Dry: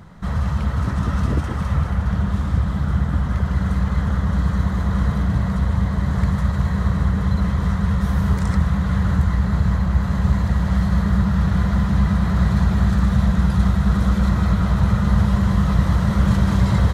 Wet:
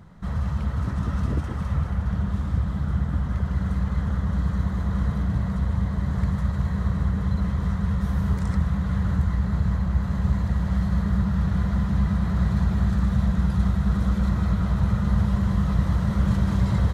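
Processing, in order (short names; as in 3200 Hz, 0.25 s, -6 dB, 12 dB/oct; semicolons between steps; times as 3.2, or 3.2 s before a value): low shelf 490 Hz +3.5 dB; gain -8 dB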